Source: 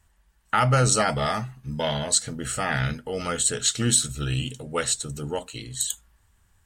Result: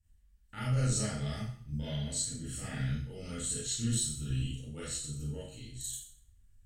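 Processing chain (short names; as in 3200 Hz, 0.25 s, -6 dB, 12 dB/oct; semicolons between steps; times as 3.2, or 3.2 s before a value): passive tone stack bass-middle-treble 10-0-1; Schroeder reverb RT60 0.52 s, combs from 27 ms, DRR -9 dB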